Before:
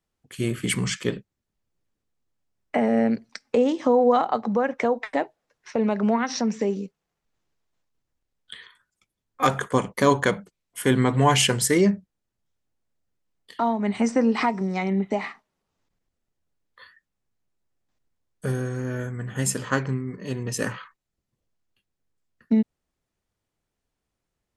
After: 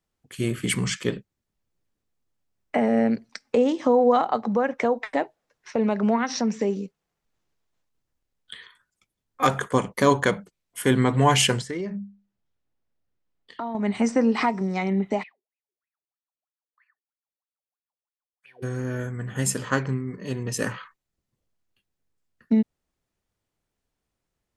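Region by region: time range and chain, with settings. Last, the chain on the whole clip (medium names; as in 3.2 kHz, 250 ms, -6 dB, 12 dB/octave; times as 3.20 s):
11.61–13.75 s: hum notches 50/100/150/200 Hz + compression 4:1, threshold -28 dBFS + distance through air 110 m
15.22–18.62 s: formants flattened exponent 0.6 + wah-wah 3.1 Hz 360–2600 Hz, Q 19 + touch-sensitive phaser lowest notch 390 Hz, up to 1.3 kHz, full sweep at -51.5 dBFS
whole clip: none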